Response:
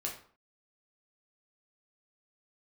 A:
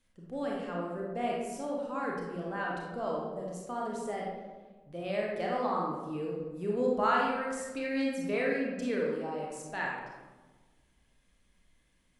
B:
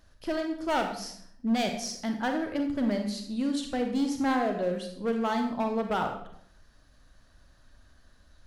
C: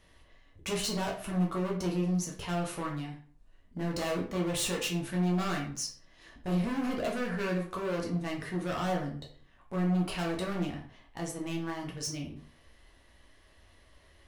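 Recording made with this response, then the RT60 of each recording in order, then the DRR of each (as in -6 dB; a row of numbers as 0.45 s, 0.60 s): C; 1.3 s, 0.70 s, 0.50 s; -3.0 dB, 4.0 dB, -2.0 dB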